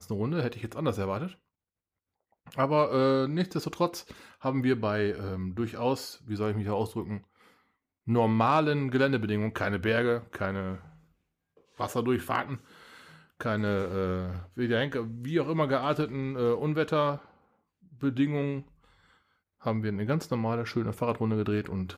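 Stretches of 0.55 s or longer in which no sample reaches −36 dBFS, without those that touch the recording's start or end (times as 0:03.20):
0:01.28–0:02.52
0:07.18–0:08.08
0:10.76–0:11.80
0:12.56–0:13.41
0:17.17–0:18.01
0:18.60–0:19.66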